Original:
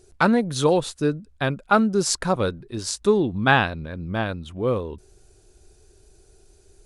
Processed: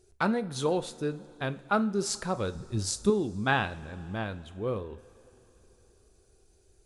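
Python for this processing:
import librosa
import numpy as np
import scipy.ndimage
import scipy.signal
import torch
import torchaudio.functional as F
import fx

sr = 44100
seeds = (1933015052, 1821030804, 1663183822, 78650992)

y = fx.bass_treble(x, sr, bass_db=12, treble_db=6, at=(2.55, 3.1))
y = fx.rev_double_slope(y, sr, seeds[0], early_s=0.36, late_s=3.9, knee_db=-18, drr_db=11.0)
y = y * librosa.db_to_amplitude(-9.0)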